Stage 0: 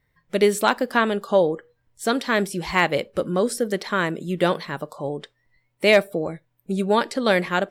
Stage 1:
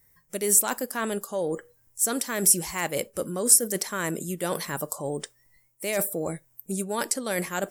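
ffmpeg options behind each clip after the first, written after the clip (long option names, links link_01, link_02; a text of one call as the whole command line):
ffmpeg -i in.wav -af "areverse,acompressor=threshold=-26dB:ratio=6,areverse,aexciter=amount=13.6:drive=1.3:freq=5700" out.wav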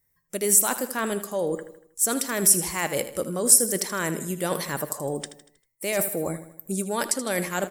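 ffmpeg -i in.wav -filter_complex "[0:a]agate=range=-11dB:threshold=-54dB:ratio=16:detection=peak,asplit=2[link_01][link_02];[link_02]aecho=0:1:79|158|237|316|395:0.237|0.114|0.0546|0.0262|0.0126[link_03];[link_01][link_03]amix=inputs=2:normalize=0,volume=1.5dB" out.wav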